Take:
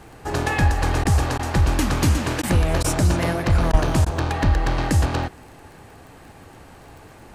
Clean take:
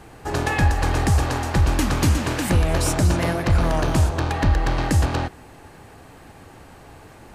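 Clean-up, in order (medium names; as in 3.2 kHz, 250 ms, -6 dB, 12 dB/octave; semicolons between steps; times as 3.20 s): de-click; de-plosive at 3.71 s; interpolate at 1.04/1.38/2.42/2.83/3.72/4.05 s, 11 ms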